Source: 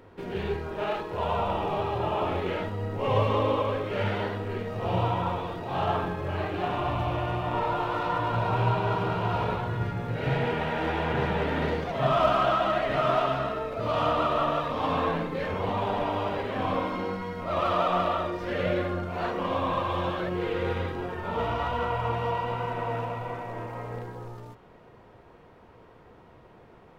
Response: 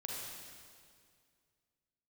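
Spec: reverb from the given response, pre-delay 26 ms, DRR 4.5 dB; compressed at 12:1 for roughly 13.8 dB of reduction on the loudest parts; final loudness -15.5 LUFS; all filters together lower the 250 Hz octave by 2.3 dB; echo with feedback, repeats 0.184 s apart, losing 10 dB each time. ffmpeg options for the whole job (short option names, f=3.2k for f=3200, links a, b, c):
-filter_complex "[0:a]equalizer=f=250:t=o:g=-3.5,acompressor=threshold=-33dB:ratio=12,aecho=1:1:184|368|552|736:0.316|0.101|0.0324|0.0104,asplit=2[a][b];[1:a]atrim=start_sample=2205,adelay=26[c];[b][c]afir=irnorm=-1:irlink=0,volume=-5dB[d];[a][d]amix=inputs=2:normalize=0,volume=20dB"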